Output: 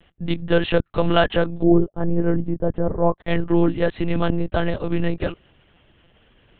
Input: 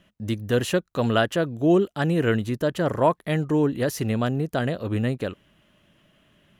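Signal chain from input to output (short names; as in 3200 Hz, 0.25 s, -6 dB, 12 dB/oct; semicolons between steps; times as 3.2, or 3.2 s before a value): monotone LPC vocoder at 8 kHz 170 Hz; 1.63–3.18 Bessel low-pass 550 Hz, order 2; gain +4.5 dB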